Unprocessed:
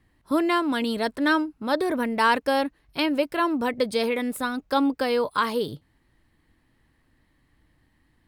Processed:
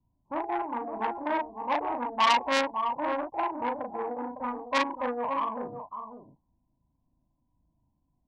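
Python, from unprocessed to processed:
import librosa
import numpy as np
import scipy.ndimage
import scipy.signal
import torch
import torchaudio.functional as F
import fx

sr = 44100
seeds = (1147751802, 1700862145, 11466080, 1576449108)

y = fx.wiener(x, sr, points=25)
y = scipy.signal.sosfilt(scipy.signal.cheby1(8, 1.0, 980.0, 'lowpass', fs=sr, output='sos'), y)
y = fx.env_lowpass(y, sr, base_hz=360.0, full_db=-20.5)
y = fx.low_shelf_res(y, sr, hz=590.0, db=-9.5, q=3.0)
y = fx.formant_shift(y, sr, semitones=3)
y = fx.doubler(y, sr, ms=37.0, db=-2.5)
y = y + 10.0 ** (-9.5 / 20.0) * np.pad(y, (int(557 * sr / 1000.0), 0))[:len(y)]
y = fx.transformer_sat(y, sr, knee_hz=3200.0)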